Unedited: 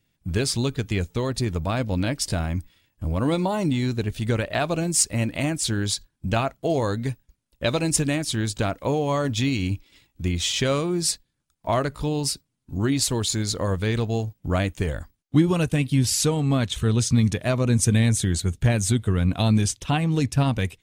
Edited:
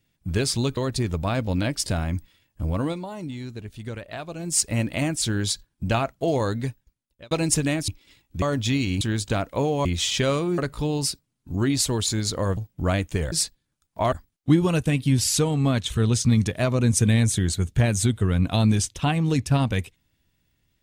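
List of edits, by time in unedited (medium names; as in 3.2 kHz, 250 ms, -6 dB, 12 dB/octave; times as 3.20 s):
0.77–1.19 s: delete
3.14–5.07 s: dip -10.5 dB, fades 0.28 s
6.99–7.73 s: fade out
8.30–9.14 s: swap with 9.73–10.27 s
11.00–11.80 s: move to 14.98 s
13.79–14.23 s: delete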